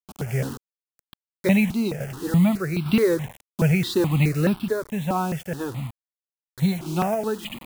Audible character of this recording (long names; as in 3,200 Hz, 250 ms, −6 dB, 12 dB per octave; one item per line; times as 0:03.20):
a quantiser's noise floor 6 bits, dither none
sample-and-hold tremolo
notches that jump at a steady rate 4.7 Hz 500–1,900 Hz